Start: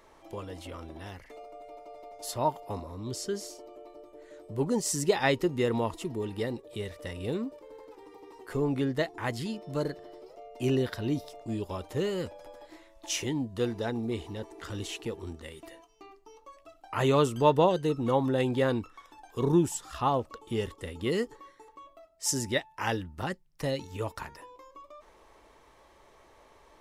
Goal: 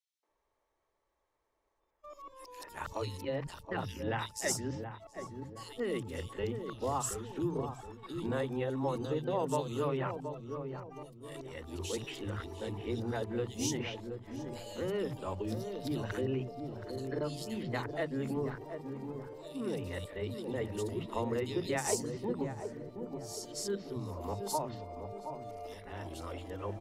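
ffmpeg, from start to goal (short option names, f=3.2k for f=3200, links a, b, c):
-filter_complex "[0:a]areverse,acompressor=threshold=-31dB:ratio=4,acrossover=split=200|3100[a][b][c];[b]adelay=230[d];[a]adelay=290[e];[e][d][c]amix=inputs=3:normalize=0,agate=range=-23dB:threshold=-53dB:ratio=16:detection=peak,asplit=2[f][g];[g]adelay=723,lowpass=f=800:p=1,volume=-6dB,asplit=2[h][i];[i]adelay=723,lowpass=f=800:p=1,volume=0.44,asplit=2[j][k];[k]adelay=723,lowpass=f=800:p=1,volume=0.44,asplit=2[l][m];[m]adelay=723,lowpass=f=800:p=1,volume=0.44,asplit=2[n][o];[o]adelay=723,lowpass=f=800:p=1,volume=0.44[p];[h][j][l][n][p]amix=inputs=5:normalize=0[q];[f][q]amix=inputs=2:normalize=0"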